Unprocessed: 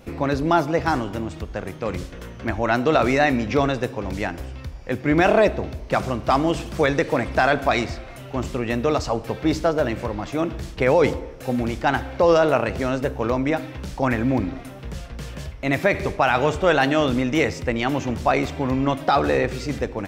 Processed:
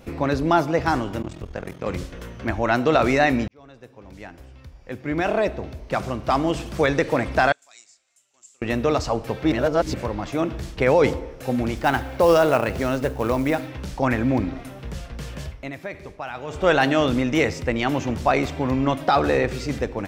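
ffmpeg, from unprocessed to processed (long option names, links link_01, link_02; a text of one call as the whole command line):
ffmpeg -i in.wav -filter_complex "[0:a]asplit=3[link_01][link_02][link_03];[link_01]afade=type=out:start_time=1.22:duration=0.02[link_04];[link_02]aeval=exprs='val(0)*sin(2*PI*21*n/s)':channel_layout=same,afade=type=in:start_time=1.22:duration=0.02,afade=type=out:start_time=1.85:duration=0.02[link_05];[link_03]afade=type=in:start_time=1.85:duration=0.02[link_06];[link_04][link_05][link_06]amix=inputs=3:normalize=0,asettb=1/sr,asplit=3[link_07][link_08][link_09];[link_07]atrim=end=7.524[link_10];[link_08]atrim=start=7.52:end=8.62,asetpts=PTS-STARTPTS,afade=type=in:duration=0.004:curve=qsin,afade=type=out:start_time=1.096:duration=0.004:curve=qsin,bandpass=frequency=7400:width_type=q:width=7.6[link_11];[link_09]atrim=start=8.616[link_12];[link_10][link_11]acrossfade=duration=0.004:curve1=hsin:curve2=qsin[link_13];[link_13][link_12]acrossfade=duration=0.004:curve1=qsin:curve2=hsin,asettb=1/sr,asplit=3[link_14][link_15][link_16];[link_14]atrim=end=11.774[link_17];[link_15]atrim=start=11.77:end=13.68,asetpts=PTS-STARTPTS,afade=type=in:duration=0.004:curve=qsin,afade=type=out:start_time=1.906:duration=0.004:curve=qsin,acrusher=bits=6:mode=log:mix=0:aa=0.000001[link_18];[link_16]atrim=start=13.676[link_19];[link_17][link_18]acrossfade=duration=0.004:curve1=hsin:curve2=qsin[link_20];[link_20][link_19]acrossfade=duration=0.004:curve1=qsin:curve2=hsin,asplit=6[link_21][link_22][link_23][link_24][link_25][link_26];[link_21]atrim=end=3.48,asetpts=PTS-STARTPTS,afade=type=out:start_time=3.476:duration=0.004:curve=hsin[link_27];[link_22]atrim=start=3.48:end=9.522,asetpts=PTS-STARTPTS,afade=type=in:duration=3.54[link_28];[link_23]atrim=start=9.518:end=9.942,asetpts=PTS-STARTPTS,areverse[link_29];[link_24]atrim=start=9.938:end=15.71,asetpts=PTS-STARTPTS,afade=type=out:start_time=5.572:duration=0.2:silence=0.199526[link_30];[link_25]atrim=start=15.71:end=16.47,asetpts=PTS-STARTPTS,volume=-14dB[link_31];[link_26]atrim=start=16.47,asetpts=PTS-STARTPTS,afade=type=in:duration=0.2:silence=0.199526[link_32];[link_27][link_28]concat=n=2:v=0:a=1[link_33];[link_33][link_29]acrossfade=duration=0.004:curve1=hsin:curve2=hsin[link_34];[link_30][link_31][link_32]concat=n=3:v=0:a=1[link_35];[link_34][link_35]acrossfade=duration=0.004:curve1=hsin:curve2=hsin" out.wav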